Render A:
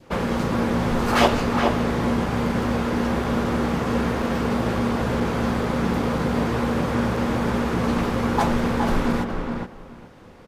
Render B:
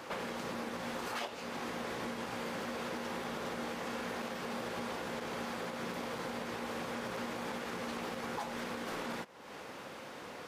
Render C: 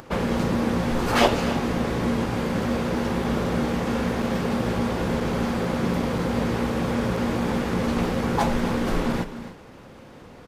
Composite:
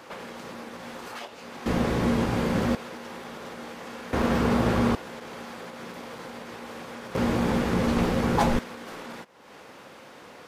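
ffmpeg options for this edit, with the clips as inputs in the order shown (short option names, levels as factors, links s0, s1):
-filter_complex "[2:a]asplit=2[s0][s1];[1:a]asplit=4[s2][s3][s4][s5];[s2]atrim=end=1.662[s6];[s0]atrim=start=1.658:end=2.752[s7];[s3]atrim=start=2.748:end=4.132[s8];[0:a]atrim=start=4.128:end=4.952[s9];[s4]atrim=start=4.948:end=7.152[s10];[s1]atrim=start=7.148:end=8.592[s11];[s5]atrim=start=8.588[s12];[s6][s7]acrossfade=d=0.004:c1=hsin:c2=hsin[s13];[s13][s8]acrossfade=d=0.004:c1=hsin:c2=hsin[s14];[s14][s9]acrossfade=d=0.004:c1=hsin:c2=hsin[s15];[s15][s10]acrossfade=d=0.004:c1=hsin:c2=hsin[s16];[s16][s11]acrossfade=d=0.004:c1=hsin:c2=hsin[s17];[s17][s12]acrossfade=d=0.004:c1=hsin:c2=hsin"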